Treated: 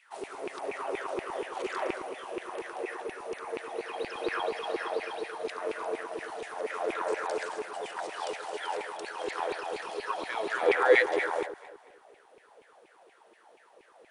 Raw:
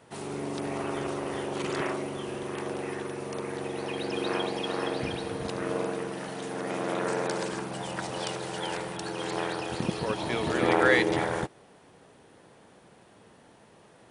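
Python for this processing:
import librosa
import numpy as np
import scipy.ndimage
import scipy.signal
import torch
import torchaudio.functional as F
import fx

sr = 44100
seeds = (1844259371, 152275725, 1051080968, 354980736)

y = fx.filter_lfo_highpass(x, sr, shape='saw_down', hz=4.2, low_hz=360.0, high_hz=2500.0, q=5.8)
y = fx.echo_alternate(y, sr, ms=111, hz=1300.0, feedback_pct=58, wet_db=-10)
y = y * 10.0 ** (-7.5 / 20.0)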